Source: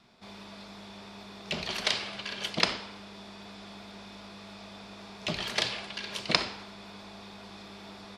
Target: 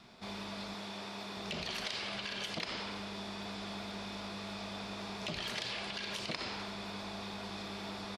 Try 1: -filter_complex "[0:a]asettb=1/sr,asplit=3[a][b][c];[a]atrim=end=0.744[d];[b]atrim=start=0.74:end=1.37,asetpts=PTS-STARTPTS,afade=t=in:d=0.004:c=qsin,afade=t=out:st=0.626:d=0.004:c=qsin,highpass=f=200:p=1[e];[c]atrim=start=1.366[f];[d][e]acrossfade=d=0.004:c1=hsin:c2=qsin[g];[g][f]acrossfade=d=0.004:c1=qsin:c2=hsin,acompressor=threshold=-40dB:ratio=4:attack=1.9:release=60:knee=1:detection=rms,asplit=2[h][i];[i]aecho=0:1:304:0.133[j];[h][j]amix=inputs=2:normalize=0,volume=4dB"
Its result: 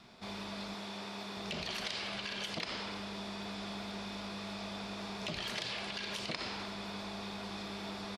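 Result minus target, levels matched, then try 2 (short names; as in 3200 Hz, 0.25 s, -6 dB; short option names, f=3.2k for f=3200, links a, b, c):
echo 0.126 s late
-filter_complex "[0:a]asettb=1/sr,asplit=3[a][b][c];[a]atrim=end=0.744[d];[b]atrim=start=0.74:end=1.37,asetpts=PTS-STARTPTS,afade=t=in:d=0.004:c=qsin,afade=t=out:st=0.626:d=0.004:c=qsin,highpass=f=200:p=1[e];[c]atrim=start=1.366[f];[d][e]acrossfade=d=0.004:c1=hsin:c2=qsin[g];[g][f]acrossfade=d=0.004:c1=qsin:c2=hsin,acompressor=threshold=-40dB:ratio=4:attack=1.9:release=60:knee=1:detection=rms,asplit=2[h][i];[i]aecho=0:1:178:0.133[j];[h][j]amix=inputs=2:normalize=0,volume=4dB"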